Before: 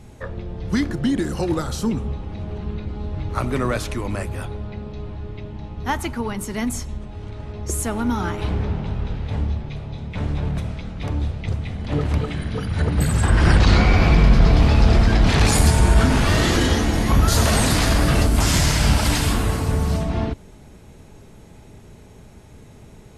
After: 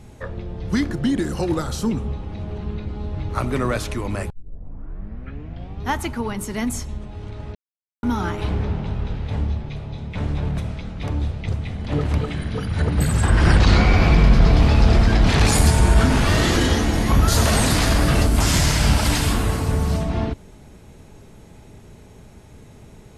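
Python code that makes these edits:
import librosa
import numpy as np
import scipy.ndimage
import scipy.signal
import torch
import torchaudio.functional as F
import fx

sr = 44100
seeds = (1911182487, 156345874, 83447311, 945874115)

y = fx.edit(x, sr, fx.tape_start(start_s=4.3, length_s=1.55),
    fx.silence(start_s=7.55, length_s=0.48), tone=tone)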